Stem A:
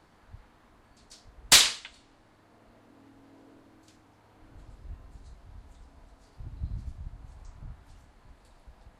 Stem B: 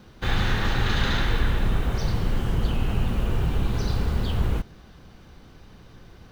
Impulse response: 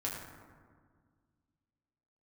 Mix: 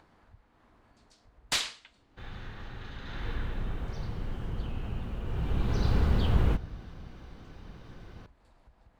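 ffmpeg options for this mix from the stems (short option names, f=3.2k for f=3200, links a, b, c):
-filter_complex "[0:a]acompressor=mode=upward:threshold=-45dB:ratio=2.5,volume=-8.5dB[a];[1:a]adelay=1950,volume=-1dB,afade=t=in:st=3.03:d=0.26:silence=0.398107,afade=t=in:st=5.25:d=0.72:silence=0.281838,asplit=2[b][c];[c]volume=-20dB[d];[2:a]atrim=start_sample=2205[e];[d][e]afir=irnorm=-1:irlink=0[f];[a][b][f]amix=inputs=3:normalize=0,highshelf=f=5.9k:g=-11"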